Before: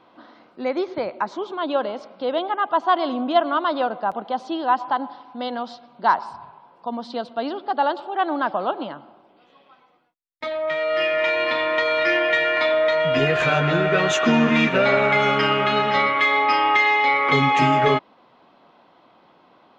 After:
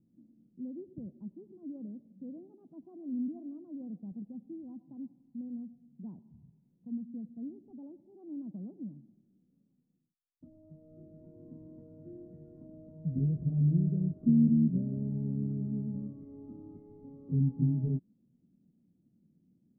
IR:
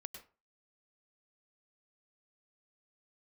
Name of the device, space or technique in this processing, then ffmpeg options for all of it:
the neighbour's flat through the wall: -af "lowpass=f=220:w=0.5412,lowpass=f=220:w=1.3066,equalizer=f=190:t=o:w=0.82:g=4,volume=-3.5dB"

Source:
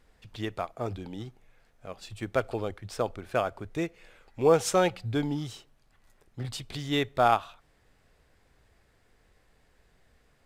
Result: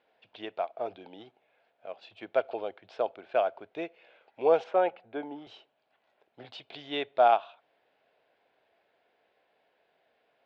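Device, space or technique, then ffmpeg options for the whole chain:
phone earpiece: -filter_complex "[0:a]highpass=480,equalizer=f=660:t=q:w=4:g=6,equalizer=f=1.2k:t=q:w=4:g=-8,equalizer=f=1.9k:t=q:w=4:g=-7,lowpass=f=3.4k:w=0.5412,lowpass=f=3.4k:w=1.3066,asettb=1/sr,asplit=3[a][b][c];[a]atrim=end=4.644[d];[b]atrim=start=4.64:end=5.47,asetpts=PTS-STARTPTS,afade=t=in:d=0.004:c=qsin,afade=t=out:st=0.826:d=0.004:c=qsin,acrossover=split=190 2300:gain=0.251 1 0.126[e][f][g];[e][f][g]amix=inputs=3:normalize=0[h];[c]atrim=start=5.466[i];[d][h]acrossfade=d=0.004:c1=hsin:c2=qsin[j];[j][i]acrossfade=d=0.004:c1=qsin:c2=hsin"

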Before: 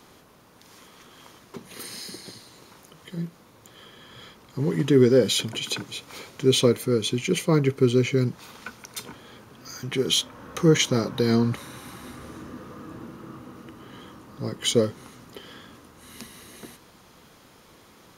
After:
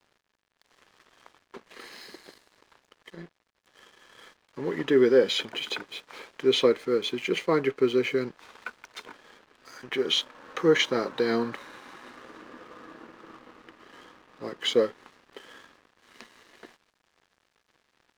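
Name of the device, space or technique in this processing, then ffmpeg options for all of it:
pocket radio on a weak battery: -af "highpass=390,lowpass=3.2k,aeval=exprs='sgn(val(0))*max(abs(val(0))-0.00266,0)':c=same,equalizer=f=1.7k:t=o:w=0.21:g=4.5,volume=1.5dB"

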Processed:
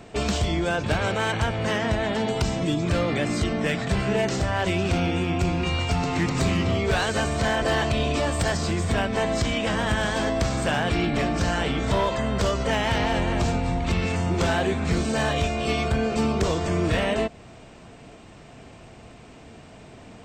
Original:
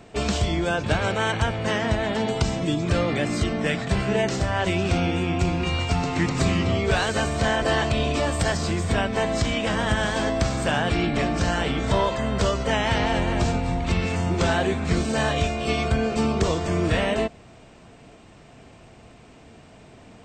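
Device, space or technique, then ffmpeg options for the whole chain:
clipper into limiter: -af "asoftclip=type=hard:threshold=-16dB,alimiter=limit=-19dB:level=0:latency=1:release=177,volume=2.5dB"

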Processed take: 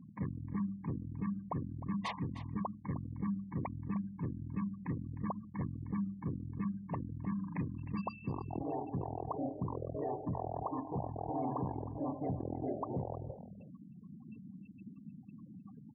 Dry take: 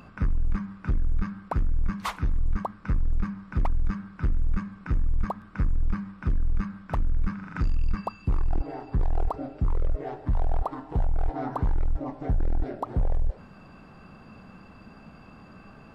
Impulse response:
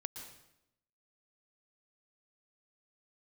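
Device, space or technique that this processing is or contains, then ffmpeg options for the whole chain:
PA system with an anti-feedback notch: -af "afftfilt=real='re*gte(hypot(re,im),0.0141)':imag='im*gte(hypot(re,im),0.0141)':win_size=1024:overlap=0.75,highpass=f=120:w=0.5412,highpass=f=120:w=1.3066,asuperstop=centerf=1400:order=8:qfactor=2.4,alimiter=level_in=4.5dB:limit=-24dB:level=0:latency=1:release=20,volume=-4.5dB,aecho=1:1:308:0.2"

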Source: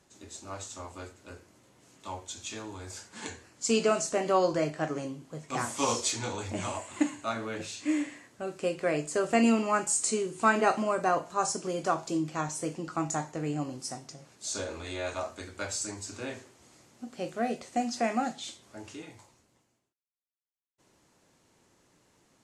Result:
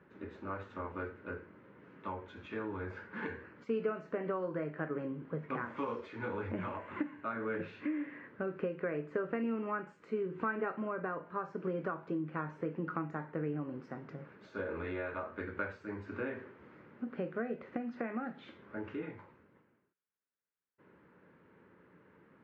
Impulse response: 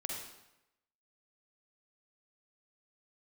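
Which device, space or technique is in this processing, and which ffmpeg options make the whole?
bass amplifier: -af "acompressor=threshold=-39dB:ratio=5,highpass=81,equalizer=f=120:t=q:w=4:g=-4,equalizer=f=180:t=q:w=4:g=5,equalizer=f=450:t=q:w=4:g=5,equalizer=f=720:t=q:w=4:g=-10,equalizer=f=1.5k:t=q:w=4:g=5,lowpass=f=2.1k:w=0.5412,lowpass=f=2.1k:w=1.3066,volume=4dB"

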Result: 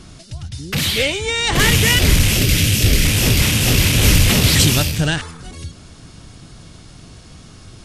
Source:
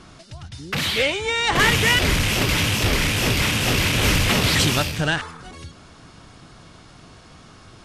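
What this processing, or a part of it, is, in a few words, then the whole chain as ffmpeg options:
smiley-face EQ: -filter_complex "[0:a]lowshelf=f=170:g=7.5,equalizer=f=1.1k:t=o:w=1.6:g=-5.5,highshelf=f=6.1k:g=9,asettb=1/sr,asplit=3[a][b][c];[a]atrim=end=2.374[d];[b]atrim=start=2.37:end=3.05,asetpts=PTS-STARTPTS,afade=t=in:d=0.004:c=qsin,afade=t=out:st=0.676:d=0.004:c=qsin,equalizer=f=950:t=o:w=0.83:g=-11[e];[c]atrim=start=3.046[f];[d][e]acrossfade=d=0.004:c1=hsin:c2=qsin[g];[g][f]acrossfade=d=0.004:c1=qsin:c2=hsin,volume=2.5dB"

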